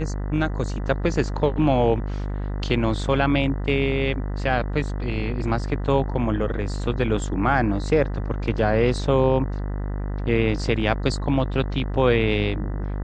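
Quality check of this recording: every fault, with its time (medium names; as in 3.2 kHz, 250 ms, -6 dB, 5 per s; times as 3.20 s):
buzz 50 Hz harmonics 40 -27 dBFS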